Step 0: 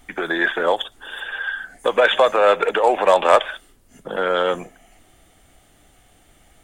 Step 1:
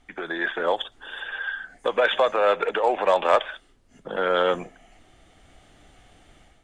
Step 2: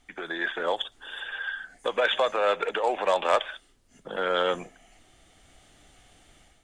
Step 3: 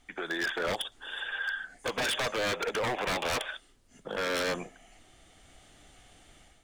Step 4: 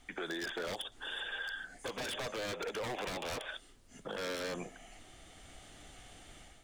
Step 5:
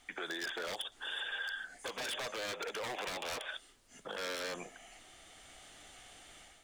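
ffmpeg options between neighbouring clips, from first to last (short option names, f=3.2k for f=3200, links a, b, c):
-af "lowpass=5.9k,dynaudnorm=f=400:g=3:m=9.5dB,volume=-8dB"
-af "highshelf=f=3.5k:g=9.5,volume=-4.5dB"
-af "aeval=exprs='0.0596*(abs(mod(val(0)/0.0596+3,4)-2)-1)':c=same"
-filter_complex "[0:a]acrossover=split=670|3400[a][b][c];[a]acompressor=threshold=-40dB:ratio=4[d];[b]acompressor=threshold=-45dB:ratio=4[e];[c]acompressor=threshold=-45dB:ratio=4[f];[d][e][f]amix=inputs=3:normalize=0,alimiter=level_in=8.5dB:limit=-24dB:level=0:latency=1:release=23,volume=-8.5dB,volume=2.5dB"
-af "lowshelf=f=370:g=-11.5,volume=1.5dB"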